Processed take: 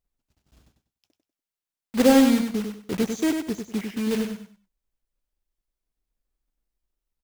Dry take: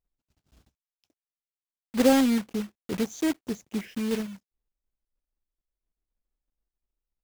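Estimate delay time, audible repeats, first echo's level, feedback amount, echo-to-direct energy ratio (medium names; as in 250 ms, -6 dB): 97 ms, 3, -6.0 dB, 26%, -5.5 dB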